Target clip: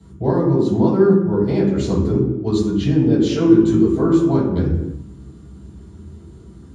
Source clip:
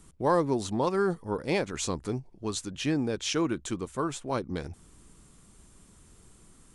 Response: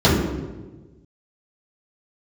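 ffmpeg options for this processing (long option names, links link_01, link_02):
-filter_complex "[0:a]alimiter=limit=-21.5dB:level=0:latency=1:release=464,asettb=1/sr,asplit=3[link_01][link_02][link_03];[link_01]atrim=end=3.294[link_04];[link_02]atrim=start=3.29:end=4.28,asetpts=PTS-STARTPTS,afade=type=in:duration=0.004:curve=qsin,afade=type=out:start_time=0.986:duration=0.004:curve=qsin,asplit=2[link_05][link_06];[link_06]adelay=18,volume=-3.5dB[link_07];[link_05][link_07]amix=inputs=2:normalize=0,atrim=end_sample=43659[link_08];[link_03]atrim=start=4.276[link_09];[link_04][link_08]acrossfade=duration=0.004:curve1=hsin:curve2=qsin[link_10];[link_10][link_09]acrossfade=duration=0.004:curve1=qsin:curve2=hsin[link_11];[1:a]atrim=start_sample=2205,afade=type=out:start_time=0.41:duration=0.01,atrim=end_sample=18522[link_12];[link_11][link_12]afir=irnorm=-1:irlink=0,volume=-16dB"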